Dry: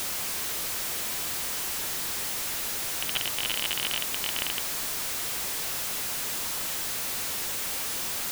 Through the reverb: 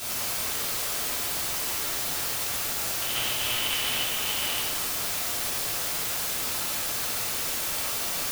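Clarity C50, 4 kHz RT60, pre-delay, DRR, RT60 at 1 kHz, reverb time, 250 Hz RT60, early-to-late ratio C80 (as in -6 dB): -1.0 dB, 1.2 s, 5 ms, -10.0 dB, 1.4 s, 1.4 s, 1.5 s, 1.0 dB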